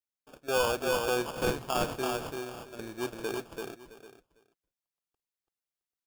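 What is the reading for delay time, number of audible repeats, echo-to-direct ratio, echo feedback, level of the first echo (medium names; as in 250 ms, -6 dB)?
51 ms, 5, -3.0 dB, no regular repeats, -20.0 dB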